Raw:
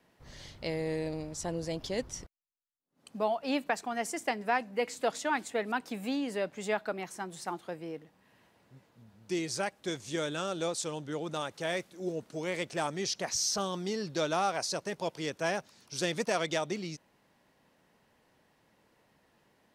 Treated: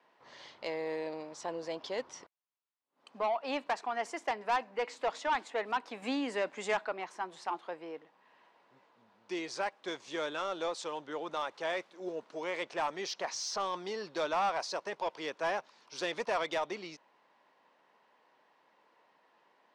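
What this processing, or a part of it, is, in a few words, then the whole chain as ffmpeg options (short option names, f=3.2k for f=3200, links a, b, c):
intercom: -filter_complex "[0:a]highpass=410,lowpass=4.1k,equalizer=f=1k:t=o:w=0.54:g=7,asoftclip=type=tanh:threshold=-24.5dB,asettb=1/sr,asplit=3[a][b][c];[a]atrim=end=6.024[d];[b]atrim=start=6.02:end=6.85,asetpts=PTS-STARTPTS,afade=t=in:d=0.004:c=qsin,afade=t=out:st=0.826:d=0.004:c=qsin,equalizer=f=250:t=o:w=1:g=7,equalizer=f=2k:t=o:w=1:g=4,equalizer=f=8k:t=o:w=1:g=11[e];[c]atrim=start=6.846[f];[d][e]acrossfade=d=0.004:c1=hsin:c2=qsin[g];[g][f]acrossfade=d=0.004:c1=qsin:c2=hsin"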